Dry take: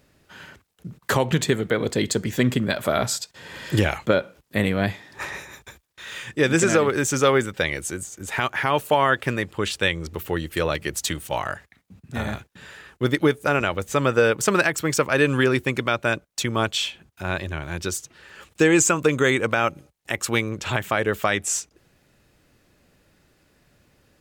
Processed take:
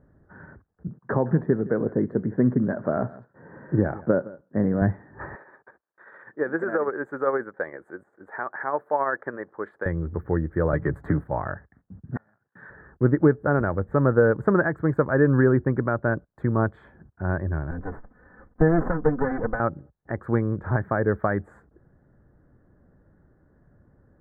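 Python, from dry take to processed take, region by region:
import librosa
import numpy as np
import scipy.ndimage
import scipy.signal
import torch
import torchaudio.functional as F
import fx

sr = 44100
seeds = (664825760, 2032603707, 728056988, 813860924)

y = fx.chain(x, sr, fx.highpass(hz=160.0, slope=12),
    fx.spacing_loss(db_at_10k=29),
    fx.echo_single(ms=165, db=-19.5), at=(0.88, 4.82))
y = fx.chain(y, sr, fx.highpass(hz=480.0, slope=12),
    fx.tremolo(hz=15.0, depth=0.42), at=(5.35, 9.86))
y = fx.chain(y, sr, fx.comb(ms=7.1, depth=0.37),
    fx.leveller(passes=1),
    fx.band_squash(depth_pct=100), at=(10.73, 11.24))
y = fx.chain(y, sr, fx.highpass(hz=110.0, slope=24),
    fx.tilt_shelf(db=-9.5, hz=740.0),
    fx.gate_flip(shuts_db=-17.0, range_db=-33), at=(12.16, 12.7))
y = fx.chain(y, sr, fx.lower_of_two(delay_ms=4.0),
    fx.high_shelf(hz=3900.0, db=-9.0), at=(17.71, 19.6))
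y = scipy.signal.sosfilt(scipy.signal.ellip(4, 1.0, 40, 1700.0, 'lowpass', fs=sr, output='sos'), y)
y = fx.low_shelf(y, sr, hz=410.0, db=11.0)
y = y * librosa.db_to_amplitude(-4.5)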